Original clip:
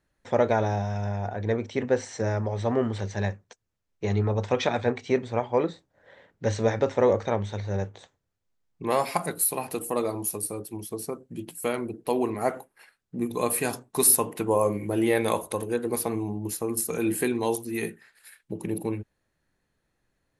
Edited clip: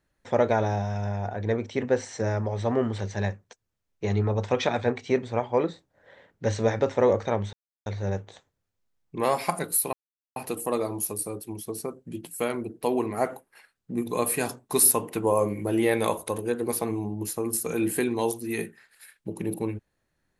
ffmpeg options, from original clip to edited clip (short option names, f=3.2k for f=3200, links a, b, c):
-filter_complex "[0:a]asplit=3[a][b][c];[a]atrim=end=7.53,asetpts=PTS-STARTPTS,afade=t=out:st=7.526:d=0.004:c=hsin,apad=pad_dur=0.33[d];[b]atrim=start=7.53:end=9.6,asetpts=PTS-STARTPTS,afade=t=in:d=0.004:c=hsin,afade=t=out:st=2.066:d=0.004:c=hsin,apad=pad_dur=0.43[e];[c]atrim=start=9.6,asetpts=PTS-STARTPTS,afade=t=in:d=0.004:c=hsin[f];[d][e][f]concat=n=3:v=0:a=1"